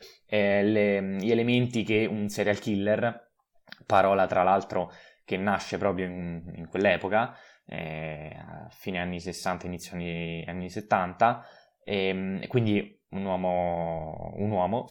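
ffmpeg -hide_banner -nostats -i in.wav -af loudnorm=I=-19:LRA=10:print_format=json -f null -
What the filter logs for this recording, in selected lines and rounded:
"input_i" : "-28.0",
"input_tp" : "-7.5",
"input_lra" : "6.3",
"input_thresh" : "-38.5",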